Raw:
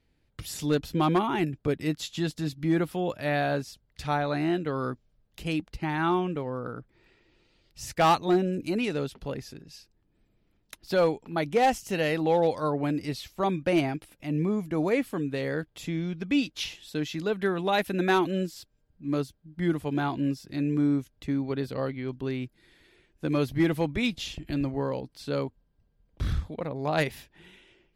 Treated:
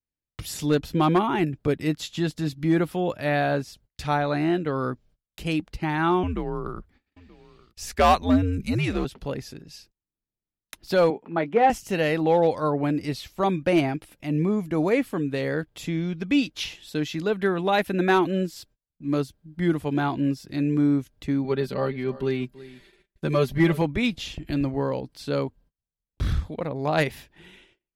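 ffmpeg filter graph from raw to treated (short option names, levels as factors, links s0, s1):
-filter_complex "[0:a]asettb=1/sr,asplit=3[s0][s1][s2];[s0]atrim=end=6.234[s3];[s1]atrim=start=6.23:end=9.05,asetpts=PTS-STARTPTS,afade=t=in:d=0.004:c=qsin,afade=t=out:st=2.816:d=0.004:c=qsin,afreqshift=-96,aecho=1:1:929:0.0708,atrim=end_sample=124362[s4];[s2]atrim=start=9.046[s5];[s3][s4]acrossfade=d=0.004:c1=hsin:c2=qsin[s6];[s6][s5]acrossfade=d=0.004:c1=qsin:c2=hsin,asettb=1/sr,asplit=3[s7][s8][s9];[s7]atrim=end=11.104[s10];[s8]atrim=start=11.1:end=11.7,asetpts=PTS-STARTPTS,afade=t=in:d=0.004:c=qsin,afade=t=out:st=0.596:d=0.004:c=qsin,acrossover=split=150 2800:gain=0.0631 1 0.0891[s11][s12][s13];[s11][s12][s13]amix=inputs=3:normalize=0,asplit=2[s14][s15];[s15]adelay=18,volume=0.266[s16];[s14][s16]amix=inputs=2:normalize=0,atrim=end_sample=26460[s17];[s9]atrim=start=11.696[s18];[s10][s17]acrossfade=d=0.004:c1=hsin:c2=qsin[s19];[s19][s18]acrossfade=d=0.004:c1=qsin:c2=hsin,asettb=1/sr,asplit=3[s20][s21][s22];[s20]atrim=end=21.444[s23];[s21]atrim=start=21.44:end=23.82,asetpts=PTS-STARTPTS,afade=t=in:d=0.004:c=qsin,afade=t=out:st=2.376:d=0.004:c=qsin,aecho=1:1:5.1:0.7,atrim=end_sample=104958,aecho=1:1:333:0.126,atrim=end_sample=104958[s24];[s22]atrim=start=23.816[s25];[s23][s24]acrossfade=d=0.004:c1=hsin:c2=qsin[s26];[s26][s25]acrossfade=d=0.004:c1=qsin:c2=hsin,agate=range=0.0355:threshold=0.00141:ratio=16:detection=peak,adynamicequalizer=threshold=0.00631:dfrequency=3000:dqfactor=0.7:tfrequency=3000:tqfactor=0.7:attack=5:release=100:ratio=0.375:range=2.5:mode=cutabove:tftype=highshelf,volume=1.5"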